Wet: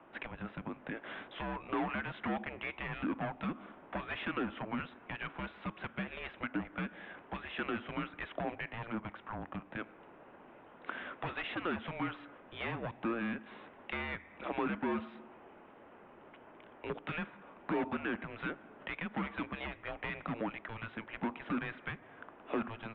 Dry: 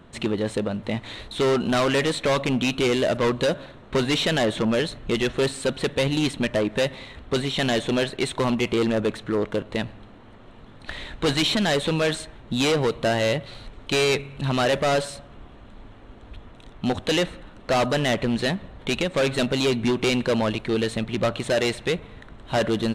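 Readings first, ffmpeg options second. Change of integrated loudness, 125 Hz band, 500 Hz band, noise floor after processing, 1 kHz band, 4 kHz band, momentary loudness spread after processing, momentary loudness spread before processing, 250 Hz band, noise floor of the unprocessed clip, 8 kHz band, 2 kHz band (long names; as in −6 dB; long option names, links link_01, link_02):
−16.0 dB, −17.5 dB, −20.5 dB, −57 dBFS, −11.0 dB, −23.0 dB, 15 LU, 9 LU, −14.5 dB, −46 dBFS, below −40 dB, −11.5 dB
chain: -filter_complex "[0:a]highpass=frequency=360:width_type=q:width=0.5412,highpass=frequency=360:width_type=q:width=1.307,lowpass=frequency=3600:width_type=q:width=0.5176,lowpass=frequency=3600:width_type=q:width=0.7071,lowpass=frequency=3600:width_type=q:width=1.932,afreqshift=-340,acompressor=threshold=-35dB:ratio=2,acrossover=split=200 2300:gain=0.126 1 0.126[link_01][link_02][link_03];[link_01][link_02][link_03]amix=inputs=3:normalize=0,volume=-1dB"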